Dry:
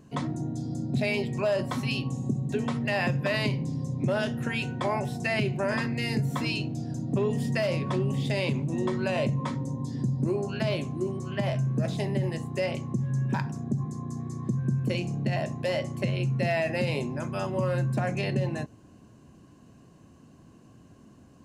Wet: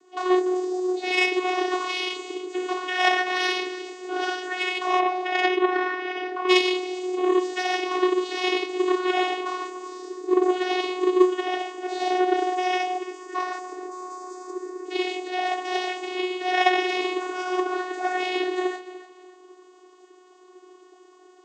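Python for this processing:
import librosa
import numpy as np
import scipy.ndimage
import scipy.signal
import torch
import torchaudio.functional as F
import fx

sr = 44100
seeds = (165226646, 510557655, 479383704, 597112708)

y = 10.0 ** (-17.5 / 20.0) * np.tanh(x / 10.0 ** (-17.5 / 20.0))
y = fx.tilt_eq(y, sr, slope=2.5)
y = fx.echo_feedback(y, sr, ms=292, feedback_pct=33, wet_db=-13.5)
y = fx.rev_gated(y, sr, seeds[0], gate_ms=200, shape='flat', drr_db=-6.0)
y = fx.dmg_tone(y, sr, hz=720.0, level_db=-30.0, at=(12.0, 12.96), fade=0.02)
y = fx.vocoder(y, sr, bands=16, carrier='saw', carrier_hz=366.0)
y = fx.lowpass(y, sr, hz=fx.line((4.99, 3300.0), (6.48, 1700.0)), slope=12, at=(4.99, 6.48), fade=0.02)
y = fx.cheby_harmonics(y, sr, harmonics=(3,), levels_db=(-14,), full_scale_db=-11.0)
y = scipy.signal.sosfilt(scipy.signal.butter(2, 280.0, 'highpass', fs=sr, output='sos'), y)
y = F.gain(torch.from_numpy(y), 8.5).numpy()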